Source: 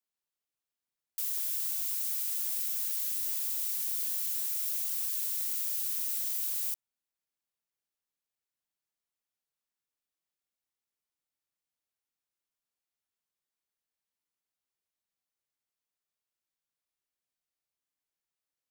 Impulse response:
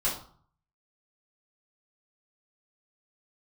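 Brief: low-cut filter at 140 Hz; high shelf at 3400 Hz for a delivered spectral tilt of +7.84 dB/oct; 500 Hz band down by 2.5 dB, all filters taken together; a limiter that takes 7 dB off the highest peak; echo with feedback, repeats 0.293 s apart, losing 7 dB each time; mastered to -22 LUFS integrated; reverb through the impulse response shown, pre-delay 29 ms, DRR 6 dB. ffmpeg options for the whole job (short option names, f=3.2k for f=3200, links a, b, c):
-filter_complex "[0:a]highpass=140,equalizer=f=500:t=o:g=-3.5,highshelf=f=3.4k:g=8,alimiter=limit=-18.5dB:level=0:latency=1,aecho=1:1:293|586|879|1172|1465:0.447|0.201|0.0905|0.0407|0.0183,asplit=2[a][b];[1:a]atrim=start_sample=2205,adelay=29[c];[b][c]afir=irnorm=-1:irlink=0,volume=-14.5dB[d];[a][d]amix=inputs=2:normalize=0,volume=2dB"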